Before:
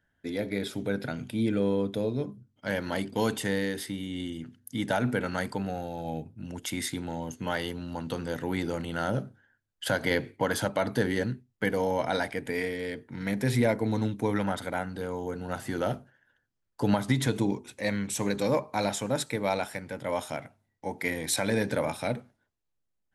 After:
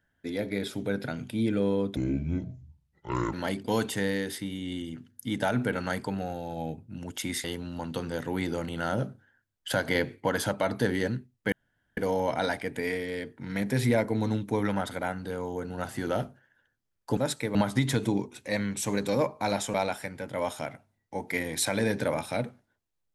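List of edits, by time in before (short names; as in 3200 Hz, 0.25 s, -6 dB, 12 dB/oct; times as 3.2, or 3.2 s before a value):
1.96–2.81 speed 62%
6.92–7.6 cut
11.68 insert room tone 0.45 s
19.07–19.45 move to 16.88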